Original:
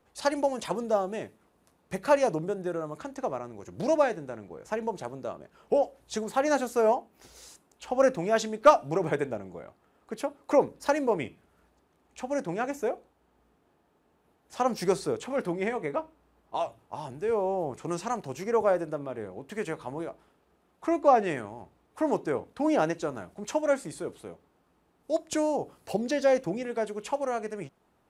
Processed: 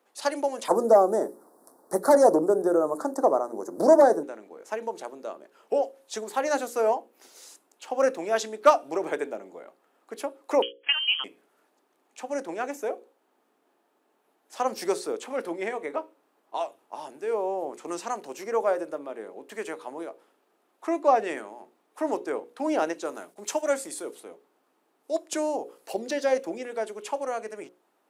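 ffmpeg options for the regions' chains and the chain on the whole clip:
-filter_complex "[0:a]asettb=1/sr,asplit=3[s0][s1][s2];[s0]atrim=end=0.684[s3];[s1]atrim=start=0.68:end=4.23,asetpts=PTS-STARTPTS,afade=t=in:d=0.004:c=qsin,afade=t=out:st=3.546:d=0.004:c=qsin,equalizer=f=6600:t=o:w=0.27:g=-7,aeval=exprs='0.316*sin(PI/2*2.51*val(0)/0.316)':c=same,asuperstop=centerf=2700:order=4:qfactor=0.54[s4];[s2]atrim=start=4.226[s5];[s3][s4]acrossfade=d=0.004:c1=hsin:c2=qsin[s6];[s6][s5]acrossfade=d=0.004:c1=qsin:c2=hsin,asettb=1/sr,asplit=3[s7][s8][s9];[s7]atrim=end=10.624[s10];[s8]atrim=start=10.62:end=11.24,asetpts=PTS-STARTPTS,afade=t=in:d=0.004:c=qsin,afade=t=out:st=0.616:d=0.004:c=qsin,agate=range=0.0794:threshold=0.00631:ratio=16:release=100:detection=peak,lowpass=f=2900:t=q:w=0.5098,lowpass=f=2900:t=q:w=0.6013,lowpass=f=2900:t=q:w=0.9,lowpass=f=2900:t=q:w=2.563,afreqshift=-3400[s11];[s9]atrim=start=11.236[s12];[s10][s11]acrossfade=d=0.004:c1=hsin:c2=qsin[s13];[s13][s12]acrossfade=d=0.004:c1=qsin:c2=hsin,asettb=1/sr,asplit=3[s14][s15][s16];[s14]atrim=end=23.054[s17];[s15]atrim=start=23.05:end=24.2,asetpts=PTS-STARTPTS,afade=t=in:d=0.004:c=qsin,afade=t=out:st=1.146:d=0.004:c=qsin,highshelf=f=4500:g=8,agate=range=0.0224:threshold=0.00251:ratio=3:release=100:detection=peak[s18];[s16]atrim=start=24.196[s19];[s17][s18]acrossfade=d=0.004:c1=hsin:c2=qsin[s20];[s20][s19]acrossfade=d=0.004:c1=qsin:c2=hsin,highpass=f=270:w=0.5412,highpass=f=270:w=1.3066,highshelf=f=8400:g=5,bandreject=f=60:t=h:w=6,bandreject=f=120:t=h:w=6,bandreject=f=180:t=h:w=6,bandreject=f=240:t=h:w=6,bandreject=f=300:t=h:w=6,bandreject=f=360:t=h:w=6,bandreject=f=420:t=h:w=6,bandreject=f=480:t=h:w=6,bandreject=f=540:t=h:w=6"

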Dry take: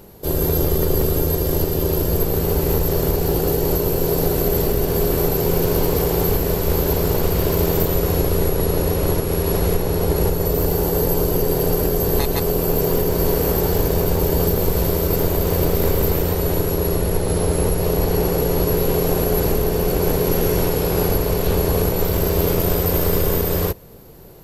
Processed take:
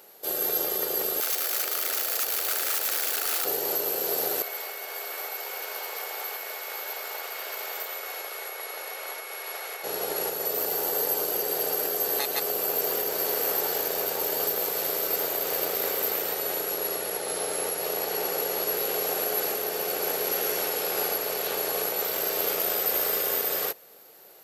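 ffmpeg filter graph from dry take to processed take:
-filter_complex "[0:a]asettb=1/sr,asplit=3[s0][s1][s2];[s0]atrim=end=1.204[s3];[s1]atrim=start=1.2:end=3.45,asetpts=PTS-STARTPTS,afade=t=in:d=0.004:c=qsin,afade=t=out:st=2.246:d=0.004:c=qsin,highpass=f=390:w=0.5412,highpass=f=390:w=1.3066,aeval=exprs='(mod(8.91*val(0)+1,2)-1)/8.91':c=same,aeval=exprs='val(0)+0.00631*sin(2*PI*4500*n/s)':c=same[s4];[s2]atrim=start=3.446[s5];[s3][s4]acrossfade=d=0.004:c1=hsin:c2=qsin[s6];[s6][s5]acrossfade=d=0.004:c1=qsin:c2=hsin,asettb=1/sr,asplit=3[s7][s8][s9];[s7]atrim=end=4.424[s10];[s8]atrim=start=4.42:end=9.84,asetpts=PTS-STARTPTS,afade=t=in:d=0.004:c=qsin,afade=t=out:st=5.416:d=0.004:c=qsin,highpass=870,highshelf=f=3400:g=-9,aeval=exprs='val(0)+0.00794*sin(2*PI*2200*n/s)':c=same[s11];[s9]atrim=start=9.836[s12];[s10][s11]acrossfade=d=0.004:c1=hsin:c2=qsin[s13];[s13][s12]acrossfade=d=0.004:c1=qsin:c2=hsin,highpass=760,bandreject=f=1000:w=5.1,volume=0.841"

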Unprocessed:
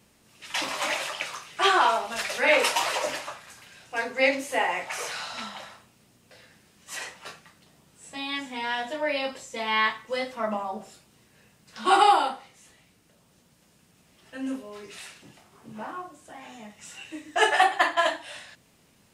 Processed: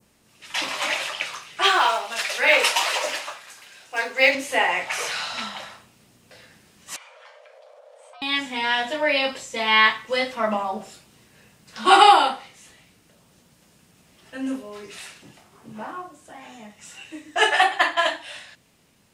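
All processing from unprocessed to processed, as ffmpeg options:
-filter_complex "[0:a]asettb=1/sr,asplit=3[s0][s1][s2];[s0]atrim=end=1.644[s3];[s1]atrim=start=1.64:end=4.35,asetpts=PTS-STARTPTS,afade=t=in:d=0.004:c=qsin,afade=t=out:st=2.706:d=0.004:c=qsin,bass=f=250:g=-12,treble=f=4000:g=2,acrusher=bits=8:mode=log:mix=0:aa=0.000001[s4];[s2]atrim=start=4.346[s5];[s3][s4]acrossfade=d=0.004:c1=hsin:c2=qsin[s6];[s6][s5]acrossfade=d=0.004:c1=qsin:c2=hsin,asettb=1/sr,asplit=3[s7][s8][s9];[s7]atrim=end=6.964[s10];[s8]atrim=start=6.96:end=8.22,asetpts=PTS-STARTPTS,afade=t=in:d=0.004:c=qsin,afade=t=out:st=1.256:d=0.004:c=qsin,aemphasis=mode=reproduction:type=riaa,afreqshift=440,acompressor=threshold=0.00355:ratio=6:attack=3.2:release=140:knee=1:detection=peak[s11];[s9]atrim=start=8.216[s12];[s10][s11]acrossfade=d=0.004:c1=hsin:c2=qsin[s13];[s13][s12]acrossfade=d=0.004:c1=qsin:c2=hsin,adynamicequalizer=threshold=0.0126:dfrequency=2900:dqfactor=0.73:tfrequency=2900:tqfactor=0.73:attack=5:release=100:ratio=0.375:range=2.5:mode=boostabove:tftype=bell,dynaudnorm=f=650:g=13:m=3.76"

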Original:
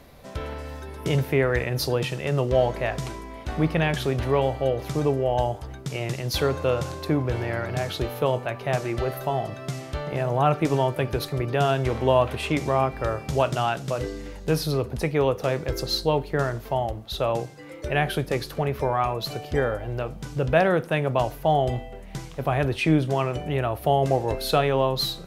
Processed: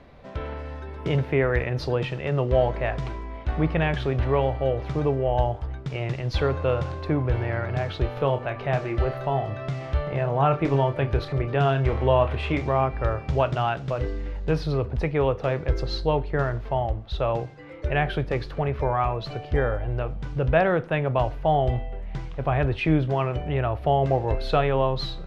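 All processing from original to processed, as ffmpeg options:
-filter_complex "[0:a]asettb=1/sr,asplit=3[s0][s1][s2];[s0]atrim=end=8.174[s3];[s1]atrim=start=8.17:end=12.62,asetpts=PTS-STARTPTS,afade=t=in:d=0.004:c=qsin,afade=t=out:st=4.446:d=0.004:c=qsin,asplit=2[s4][s5];[s5]adelay=29,volume=0.355[s6];[s4][s6]amix=inputs=2:normalize=0,atrim=end_sample=196245,acompressor=mode=upward:threshold=0.0447:ratio=2.5:attack=3.2:release=140:knee=2.83:detection=peak[s7];[s2]atrim=start=12.616[s8];[s3][s7]acrossfade=d=0.004:c1=hsin:c2=qsin[s9];[s9][s8]acrossfade=d=0.004:c1=qsin:c2=hsin,lowpass=2900,asubboost=boost=3:cutoff=99"

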